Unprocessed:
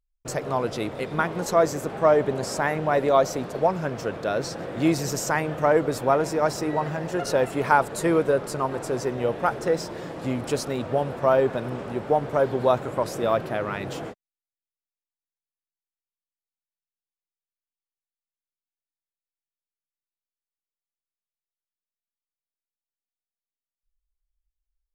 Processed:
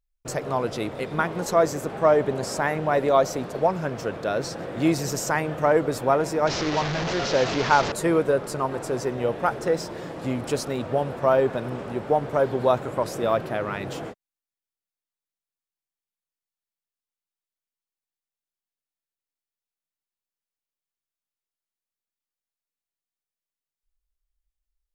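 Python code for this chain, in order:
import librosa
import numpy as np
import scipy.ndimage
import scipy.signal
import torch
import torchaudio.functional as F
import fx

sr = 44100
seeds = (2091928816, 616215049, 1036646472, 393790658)

y = fx.delta_mod(x, sr, bps=32000, step_db=-20.5, at=(6.47, 7.92))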